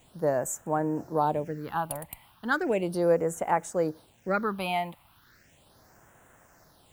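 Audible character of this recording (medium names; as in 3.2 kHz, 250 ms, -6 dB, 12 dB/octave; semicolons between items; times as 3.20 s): a quantiser's noise floor 10-bit, dither none; phasing stages 6, 0.36 Hz, lowest notch 410–4500 Hz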